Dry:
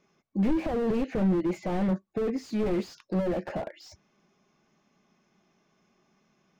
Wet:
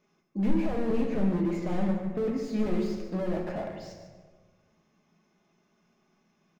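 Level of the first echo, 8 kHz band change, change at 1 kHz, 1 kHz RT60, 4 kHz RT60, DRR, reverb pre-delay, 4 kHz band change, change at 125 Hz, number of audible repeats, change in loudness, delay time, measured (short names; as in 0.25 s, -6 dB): -11.5 dB, n/a, -2.0 dB, 1.3 s, 0.85 s, 1.5 dB, 5 ms, -2.0 dB, -0.5 dB, 1, -1.0 dB, 0.146 s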